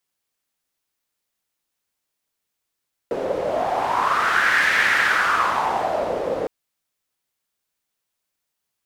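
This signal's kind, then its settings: wind-like swept noise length 3.36 s, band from 500 Hz, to 1800 Hz, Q 4.7, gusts 1, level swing 6.5 dB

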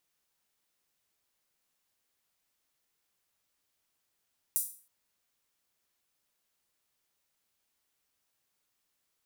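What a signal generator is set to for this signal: open hi-hat length 0.32 s, high-pass 9300 Hz, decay 0.41 s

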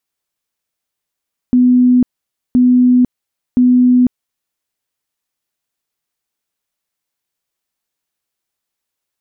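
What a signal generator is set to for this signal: tone bursts 249 Hz, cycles 124, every 1.02 s, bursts 3, -6 dBFS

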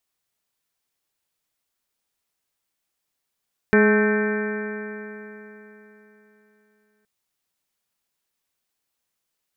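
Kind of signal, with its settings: stretched partials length 3.32 s, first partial 210 Hz, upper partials 1/-12/-14/-16/-14.5/-4/-6.5/-18.5/-14 dB, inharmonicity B 0.0024, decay 3.62 s, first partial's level -16 dB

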